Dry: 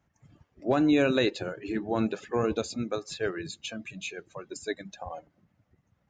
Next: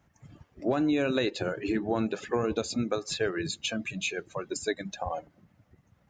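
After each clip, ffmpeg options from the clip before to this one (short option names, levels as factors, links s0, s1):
-af "acompressor=threshold=0.0282:ratio=4,volume=2"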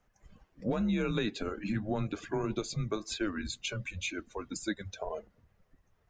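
-af "flanger=delay=2:depth=2.4:regen=-75:speed=1.9:shape=triangular,afreqshift=-100"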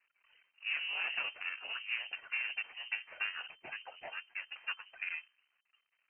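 -filter_complex "[0:a]aeval=exprs='max(val(0),0)':c=same,acrossover=split=280 2200:gain=0.0631 1 0.224[s0][s1][s2];[s0][s1][s2]amix=inputs=3:normalize=0,lowpass=f=2600:t=q:w=0.5098,lowpass=f=2600:t=q:w=0.6013,lowpass=f=2600:t=q:w=0.9,lowpass=f=2600:t=q:w=2.563,afreqshift=-3100,volume=1.41"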